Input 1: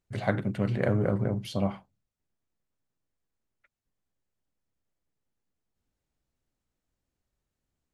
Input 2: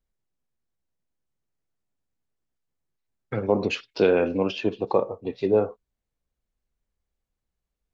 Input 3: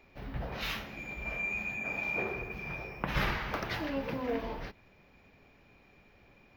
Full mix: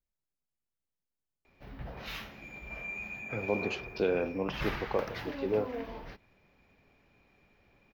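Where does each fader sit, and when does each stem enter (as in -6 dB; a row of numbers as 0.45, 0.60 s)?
off, -9.5 dB, -5.0 dB; off, 0.00 s, 1.45 s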